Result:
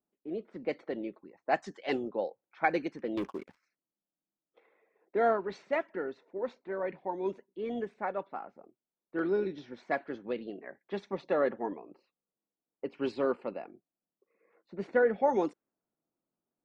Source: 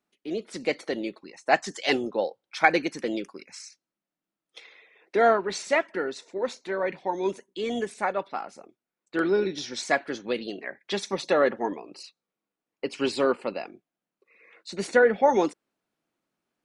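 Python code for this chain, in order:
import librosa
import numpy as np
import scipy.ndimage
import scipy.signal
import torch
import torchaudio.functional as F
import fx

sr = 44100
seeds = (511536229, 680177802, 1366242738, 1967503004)

y = fx.env_lowpass(x, sr, base_hz=1100.0, full_db=-17.5)
y = fx.high_shelf(y, sr, hz=2100.0, db=-11.5)
y = fx.leveller(y, sr, passes=3, at=(3.17, 3.63))
y = y * librosa.db_to_amplitude(-5.5)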